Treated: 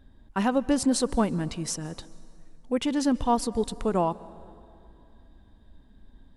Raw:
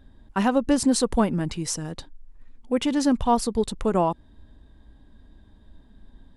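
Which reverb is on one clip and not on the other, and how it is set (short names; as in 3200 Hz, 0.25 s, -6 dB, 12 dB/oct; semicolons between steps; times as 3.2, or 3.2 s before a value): plate-style reverb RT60 2.6 s, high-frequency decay 0.65×, pre-delay 0.12 s, DRR 19.5 dB; gain -3 dB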